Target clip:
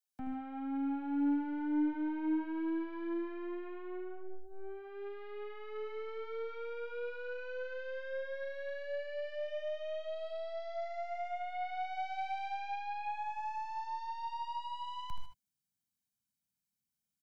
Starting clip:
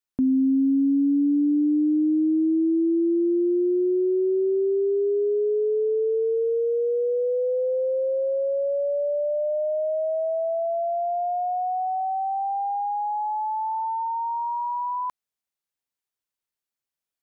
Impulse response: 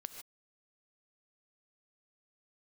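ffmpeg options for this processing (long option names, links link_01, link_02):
-filter_complex "[0:a]highpass=frequency=110:poles=1,bass=frequency=250:gain=-3,treble=frequency=4000:gain=8,bandreject=frequency=380:width=12,aeval=exprs='(tanh(35.5*val(0)+0.3)-tanh(0.3))/35.5':channel_layout=same,aecho=1:1:1.3:0.71,aecho=1:1:77:0.376,acrossover=split=160|290[link_01][link_02][link_03];[link_02]dynaudnorm=framelen=540:gausssize=3:maxgain=14dB[link_04];[link_01][link_04][link_03]amix=inputs=3:normalize=0[link_05];[1:a]atrim=start_sample=2205[link_06];[link_05][link_06]afir=irnorm=-1:irlink=0,asubboost=boost=7:cutoff=210,volume=-5.5dB"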